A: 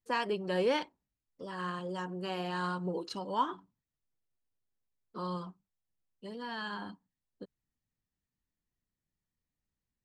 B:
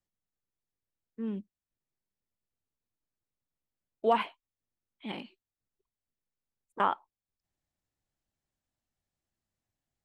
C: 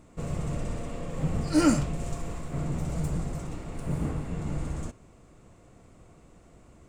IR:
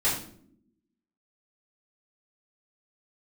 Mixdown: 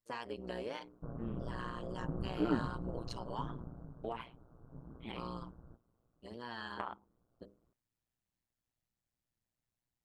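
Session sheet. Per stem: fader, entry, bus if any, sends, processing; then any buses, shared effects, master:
-1.0 dB, 0.00 s, bus A, no send, none
-2.0 dB, 0.00 s, bus A, no send, none
3.40 s -3 dB -> 3.95 s -14 dB, 0.85 s, no bus, no send, Chebyshev low-pass 1.5 kHz, order 6; flange 0.72 Hz, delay 4.2 ms, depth 7.7 ms, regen -65%
bus A: 0.0 dB, hum notches 50/100/150/200/250/300/350/400/450/500 Hz; compression 5:1, threshold -35 dBFS, peak gain reduction 12 dB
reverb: none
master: AM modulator 120 Hz, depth 85%

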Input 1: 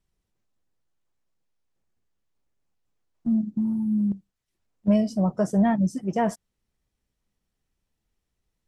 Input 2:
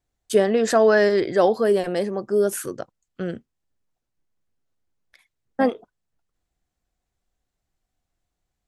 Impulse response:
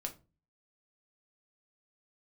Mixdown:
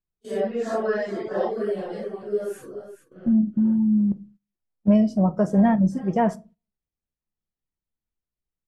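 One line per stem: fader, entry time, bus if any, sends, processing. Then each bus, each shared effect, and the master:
-0.5 dB, 0.00 s, send -4 dB, no echo send, none
-7.5 dB, 0.00 s, send -16 dB, echo send -11 dB, phase randomisation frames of 200 ms; reverb removal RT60 0.54 s; expander -43 dBFS; auto duck -11 dB, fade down 0.70 s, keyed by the first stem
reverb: on, RT60 0.30 s, pre-delay 6 ms
echo: delay 425 ms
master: gate -48 dBFS, range -16 dB; treble shelf 3.7 kHz -12 dB

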